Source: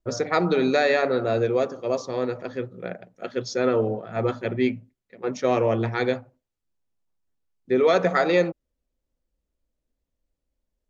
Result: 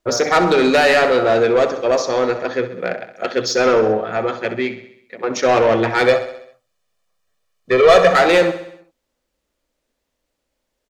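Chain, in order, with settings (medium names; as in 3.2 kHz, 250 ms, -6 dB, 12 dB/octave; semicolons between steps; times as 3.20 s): 4.03–5.31 s: compression 2:1, threshold -32 dBFS, peak gain reduction 8.5 dB; overdrive pedal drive 19 dB, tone 6.1 kHz, clips at -8 dBFS; 6.06–8.11 s: comb 1.7 ms, depth 72%; feedback delay 65 ms, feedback 57%, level -12.5 dB; trim +2.5 dB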